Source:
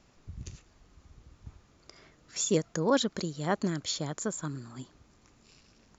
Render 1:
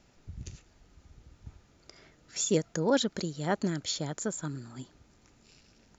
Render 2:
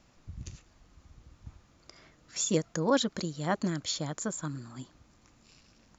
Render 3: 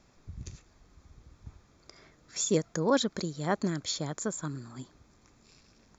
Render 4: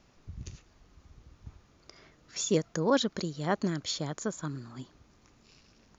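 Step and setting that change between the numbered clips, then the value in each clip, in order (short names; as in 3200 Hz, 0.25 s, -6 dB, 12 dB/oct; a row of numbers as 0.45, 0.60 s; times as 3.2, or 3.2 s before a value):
notch, frequency: 1100, 410, 2900, 7400 Hz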